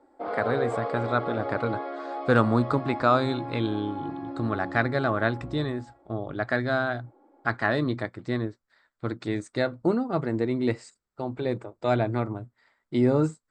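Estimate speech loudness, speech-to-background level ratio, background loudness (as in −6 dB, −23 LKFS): −27.5 LKFS, 7.0 dB, −34.5 LKFS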